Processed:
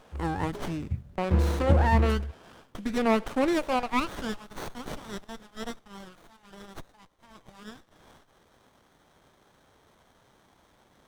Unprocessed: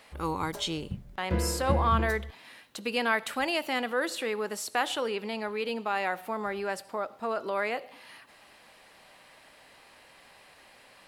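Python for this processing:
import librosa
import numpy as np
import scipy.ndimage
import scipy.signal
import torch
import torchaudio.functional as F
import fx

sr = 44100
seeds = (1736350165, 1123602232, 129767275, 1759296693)

y = fx.formant_shift(x, sr, semitones=-4)
y = fx.filter_sweep_highpass(y, sr, from_hz=73.0, to_hz=3300.0, start_s=2.74, end_s=4.56, q=1.7)
y = fx.running_max(y, sr, window=17)
y = y * librosa.db_to_amplitude(2.0)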